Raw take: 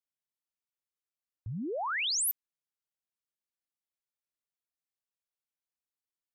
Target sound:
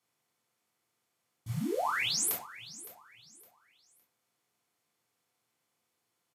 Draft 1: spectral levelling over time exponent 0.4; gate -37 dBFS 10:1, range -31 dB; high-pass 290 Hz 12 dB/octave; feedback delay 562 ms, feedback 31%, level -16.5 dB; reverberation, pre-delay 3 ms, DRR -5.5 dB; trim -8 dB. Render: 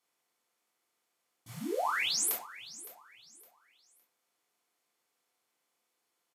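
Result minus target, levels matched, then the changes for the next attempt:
125 Hz band -11.5 dB
change: high-pass 98 Hz 12 dB/octave

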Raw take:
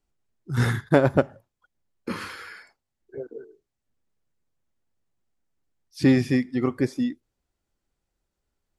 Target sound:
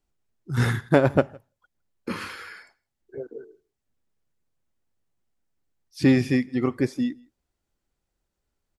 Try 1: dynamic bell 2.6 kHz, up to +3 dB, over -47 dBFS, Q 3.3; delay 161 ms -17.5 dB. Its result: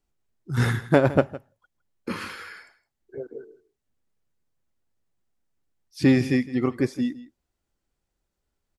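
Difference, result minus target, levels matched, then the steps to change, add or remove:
echo-to-direct +10 dB
change: delay 161 ms -27.5 dB

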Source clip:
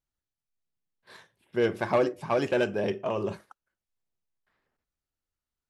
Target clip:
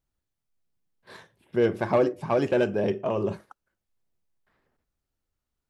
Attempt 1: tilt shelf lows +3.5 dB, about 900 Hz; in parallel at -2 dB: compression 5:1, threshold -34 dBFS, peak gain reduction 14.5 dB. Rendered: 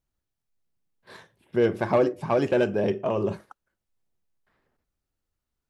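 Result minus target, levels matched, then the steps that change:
compression: peak gain reduction -6.5 dB
change: compression 5:1, threshold -42 dBFS, peak gain reduction 21 dB

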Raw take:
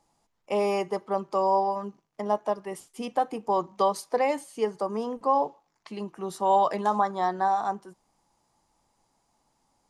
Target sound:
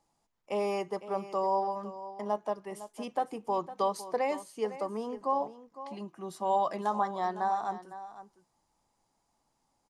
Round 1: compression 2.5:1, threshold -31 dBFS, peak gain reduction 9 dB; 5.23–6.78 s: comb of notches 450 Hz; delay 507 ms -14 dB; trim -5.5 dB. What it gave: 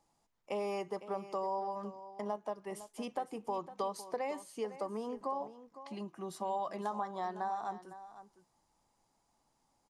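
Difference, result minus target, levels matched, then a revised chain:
compression: peak gain reduction +9 dB
5.23–6.78 s: comb of notches 450 Hz; delay 507 ms -14 dB; trim -5.5 dB

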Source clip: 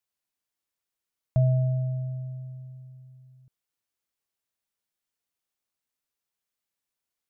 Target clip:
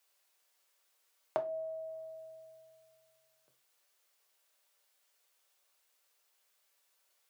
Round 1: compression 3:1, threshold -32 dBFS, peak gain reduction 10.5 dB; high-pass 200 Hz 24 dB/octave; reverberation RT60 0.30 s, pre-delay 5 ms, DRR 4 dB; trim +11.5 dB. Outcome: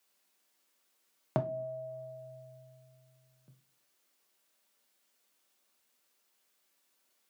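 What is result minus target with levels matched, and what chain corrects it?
250 Hz band +13.0 dB
compression 3:1, threshold -32 dBFS, peak gain reduction 10.5 dB; high-pass 430 Hz 24 dB/octave; reverberation RT60 0.30 s, pre-delay 5 ms, DRR 4 dB; trim +11.5 dB

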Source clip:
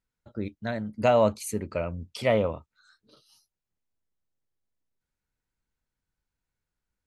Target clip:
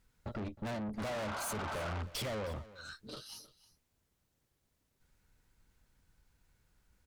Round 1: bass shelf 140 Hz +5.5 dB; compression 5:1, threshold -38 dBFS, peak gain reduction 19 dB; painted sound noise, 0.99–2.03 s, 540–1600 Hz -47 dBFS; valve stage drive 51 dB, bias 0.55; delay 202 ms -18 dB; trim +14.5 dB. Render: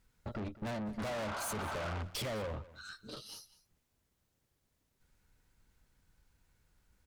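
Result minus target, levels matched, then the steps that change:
echo 111 ms early
change: delay 313 ms -18 dB

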